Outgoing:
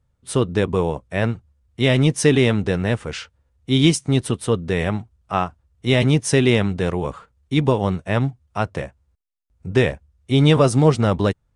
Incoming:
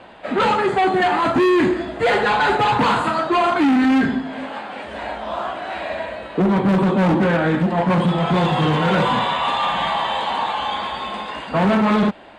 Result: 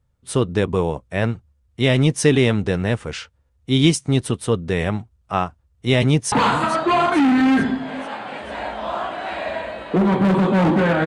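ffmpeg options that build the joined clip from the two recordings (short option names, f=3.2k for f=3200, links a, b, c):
-filter_complex "[0:a]apad=whole_dur=11.06,atrim=end=11.06,atrim=end=6.322[a];[1:a]atrim=start=2.758:end=7.5[b];[a][b]acrossfade=d=0.004:c1=hsin:c2=hsin,asplit=2[c][d];[d]afade=t=in:st=5.99:d=0.01,afade=t=out:st=6.32:d=0.01,aecho=0:1:440|880|1320|1760|2200:0.188365|0.103601|0.0569804|0.0313392|0.0172366[e];[c][e]amix=inputs=2:normalize=0"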